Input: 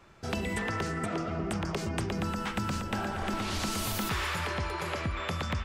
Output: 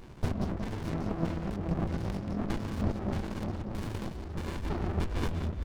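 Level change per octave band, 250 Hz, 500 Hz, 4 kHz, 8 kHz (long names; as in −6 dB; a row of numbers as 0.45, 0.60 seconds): +0.5, −2.0, −11.5, −14.0 decibels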